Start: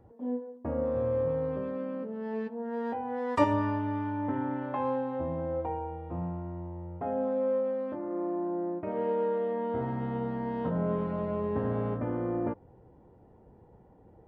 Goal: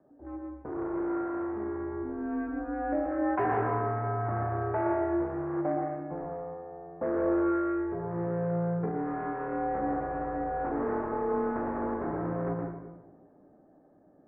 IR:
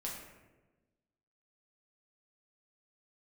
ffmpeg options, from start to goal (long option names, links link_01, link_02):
-filter_complex "[0:a]volume=29dB,asoftclip=hard,volume=-29dB,dynaudnorm=framelen=260:gausssize=13:maxgain=5dB,asplit=2[link_01][link_02];[1:a]atrim=start_sample=2205,adelay=119[link_03];[link_02][link_03]afir=irnorm=-1:irlink=0,volume=-1.5dB[link_04];[link_01][link_04]amix=inputs=2:normalize=0,highpass=frequency=410:width_type=q:width=0.5412,highpass=frequency=410:width_type=q:width=1.307,lowpass=frequency=2000:width_type=q:width=0.5176,lowpass=frequency=2000:width_type=q:width=0.7071,lowpass=frequency=2000:width_type=q:width=1.932,afreqshift=-180,asettb=1/sr,asplit=3[link_05][link_06][link_07];[link_05]atrim=end=8.854[link_08];[link_06]atrim=start=8.85:end=9.41,asetpts=PTS-STARTPTS,afade=type=in:duration=0.004:curve=qsin,afade=type=out:start_time=0.556:duration=0.004:curve=qsin,acompressor=threshold=-29dB:ratio=6[link_09];[link_07]atrim=start=9.406[link_10];[link_08][link_09]acrossfade=duration=0.004:curve1=hsin:curve2=qsin[link_11];[link_11][link_10]acrossfade=duration=0.004:curve1=qsin:curve2=hsin"